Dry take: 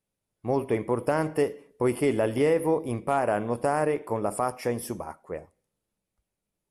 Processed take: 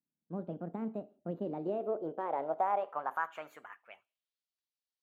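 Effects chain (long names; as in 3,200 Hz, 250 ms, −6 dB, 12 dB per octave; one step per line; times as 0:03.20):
gliding playback speed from 147% → 120%
harmonic generator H 8 −34 dB, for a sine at −12 dBFS
band-pass filter sweep 210 Hz → 4,400 Hz, 0:01.37–0:04.50
level −2.5 dB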